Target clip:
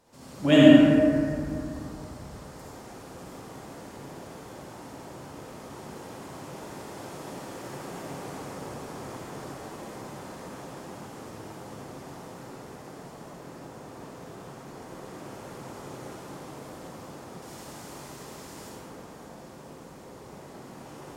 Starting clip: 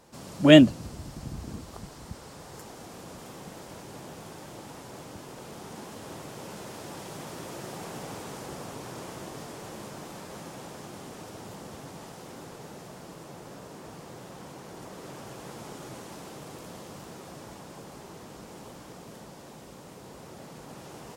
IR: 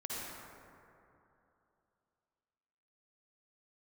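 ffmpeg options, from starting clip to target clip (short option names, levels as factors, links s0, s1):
-filter_complex "[0:a]asettb=1/sr,asplit=3[s0][s1][s2];[s0]atrim=end=17.424[s3];[s1]atrim=start=17.42:end=18.69,asetpts=PTS-STARTPTS,afade=t=in:d=0.004:c=qsin,afade=t=out:st=1.266:d=0.004:c=qsin,highshelf=f=2300:g=9.5[s4];[s2]atrim=start=18.686[s5];[s3][s4]acrossfade=d=0.004:c1=hsin:c2=qsin[s6];[s6][s5]acrossfade=d=0.004:c1=qsin:c2=hsin[s7];[1:a]atrim=start_sample=2205,asetrate=48510,aresample=44100[s8];[s7][s8]afir=irnorm=-1:irlink=0,volume=0.891"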